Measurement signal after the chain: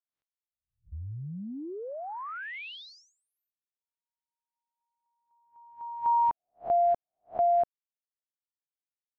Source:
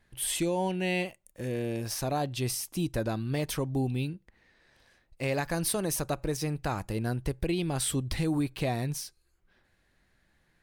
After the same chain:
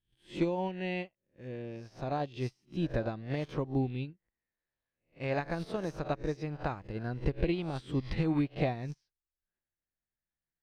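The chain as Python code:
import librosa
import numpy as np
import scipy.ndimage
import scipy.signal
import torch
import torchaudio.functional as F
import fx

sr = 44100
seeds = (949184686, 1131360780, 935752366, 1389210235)

y = fx.spec_swells(x, sr, rise_s=0.48)
y = fx.air_absorb(y, sr, metres=210.0)
y = fx.upward_expand(y, sr, threshold_db=-46.0, expansion=2.5)
y = y * librosa.db_to_amplitude(2.0)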